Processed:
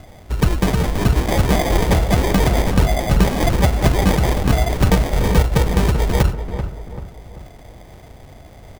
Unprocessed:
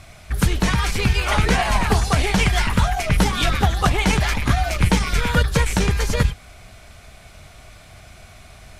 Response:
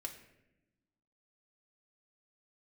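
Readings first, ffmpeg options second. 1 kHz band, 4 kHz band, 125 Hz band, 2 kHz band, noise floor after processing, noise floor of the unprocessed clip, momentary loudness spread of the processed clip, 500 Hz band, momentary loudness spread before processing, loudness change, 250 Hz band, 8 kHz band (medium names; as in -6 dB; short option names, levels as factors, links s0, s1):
0.0 dB, -3.0 dB, +3.5 dB, -3.5 dB, -42 dBFS, -45 dBFS, 10 LU, +5.5 dB, 3 LU, +2.0 dB, +4.0 dB, -1.5 dB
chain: -filter_complex "[0:a]acrusher=samples=32:mix=1:aa=0.000001,asplit=2[s0][s1];[s1]adelay=387,lowpass=f=1600:p=1,volume=0.376,asplit=2[s2][s3];[s3]adelay=387,lowpass=f=1600:p=1,volume=0.44,asplit=2[s4][s5];[s5]adelay=387,lowpass=f=1600:p=1,volume=0.44,asplit=2[s6][s7];[s7]adelay=387,lowpass=f=1600:p=1,volume=0.44,asplit=2[s8][s9];[s9]adelay=387,lowpass=f=1600:p=1,volume=0.44[s10];[s0][s2][s4][s6][s8][s10]amix=inputs=6:normalize=0,volume=1.26"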